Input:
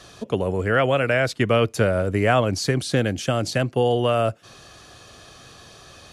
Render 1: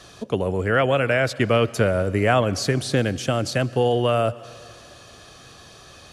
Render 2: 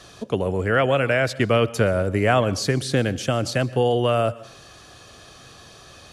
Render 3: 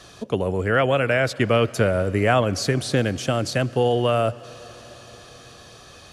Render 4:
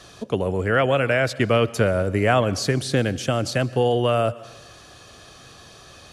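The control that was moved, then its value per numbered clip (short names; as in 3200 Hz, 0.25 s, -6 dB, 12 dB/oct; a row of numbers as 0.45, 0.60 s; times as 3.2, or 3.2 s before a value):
plate-style reverb, RT60: 2.3, 0.52, 5.2, 1.1 s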